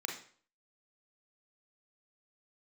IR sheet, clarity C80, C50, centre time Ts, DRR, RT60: 10.5 dB, 6.0 dB, 27 ms, 1.0 dB, 0.50 s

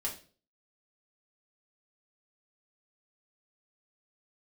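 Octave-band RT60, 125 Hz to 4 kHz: 0.50, 0.45, 0.50, 0.35, 0.35, 0.40 seconds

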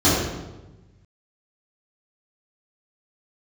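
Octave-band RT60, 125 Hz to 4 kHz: 1.9, 1.4, 1.2, 1.0, 0.85, 0.80 seconds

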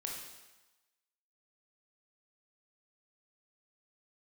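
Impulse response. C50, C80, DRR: 2.0 dB, 5.0 dB, −1.0 dB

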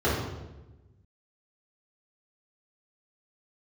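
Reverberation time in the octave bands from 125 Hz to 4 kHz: 1.8, 1.4, 1.2, 0.95, 0.85, 0.80 seconds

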